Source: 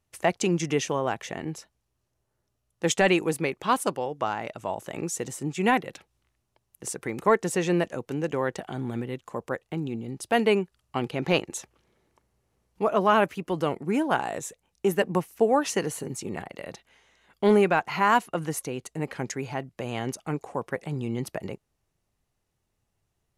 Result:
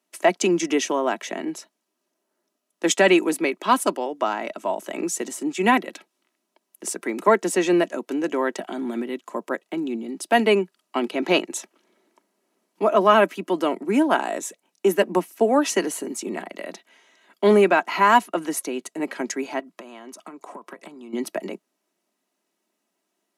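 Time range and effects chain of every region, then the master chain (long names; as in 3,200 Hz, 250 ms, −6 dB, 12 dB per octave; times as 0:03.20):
0:19.59–0:21.13: parametric band 1,100 Hz +8 dB 0.45 octaves + downward compressor 20 to 1, threshold −38 dBFS
whole clip: Butterworth high-pass 180 Hz 72 dB per octave; comb filter 3.1 ms, depth 46%; level +4 dB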